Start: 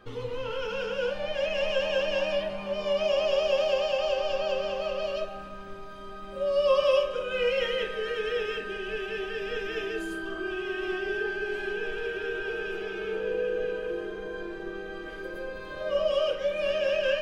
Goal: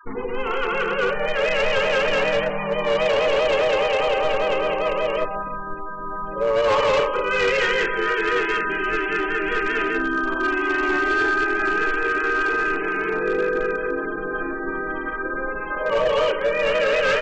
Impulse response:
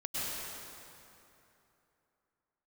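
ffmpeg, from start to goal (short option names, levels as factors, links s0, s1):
-filter_complex "[0:a]equalizer=f=125:t=o:w=1:g=-11,equalizer=f=250:t=o:w=1:g=7,equalizer=f=500:t=o:w=1:g=-4,equalizer=f=1000:t=o:w=1:g=7,equalizer=f=2000:t=o:w=1:g=8,equalizer=f=4000:t=o:w=1:g=-7,asplit=2[s0][s1];[s1]adelay=270,highpass=300,lowpass=3400,asoftclip=type=hard:threshold=0.112,volume=0.0708[s2];[s0][s2]amix=inputs=2:normalize=0,afftfilt=real='re*gte(hypot(re,im),0.0158)':imag='im*gte(hypot(re,im),0.0158)':win_size=1024:overlap=0.75,bandreject=f=980:w=8.6,asplit=2[s3][s4];[s4]asetrate=35002,aresample=44100,atempo=1.25992,volume=0.631[s5];[s3][s5]amix=inputs=2:normalize=0,aresample=11025,aresample=44100,bandreject=f=60:t=h:w=6,bandreject=f=120:t=h:w=6,bandreject=f=180:t=h:w=6,bandreject=f=240:t=h:w=6,bandreject=f=300:t=h:w=6,bandreject=f=360:t=h:w=6,bandreject=f=420:t=h:w=6,aresample=16000,volume=12.6,asoftclip=hard,volume=0.0794,aresample=44100,volume=2.11"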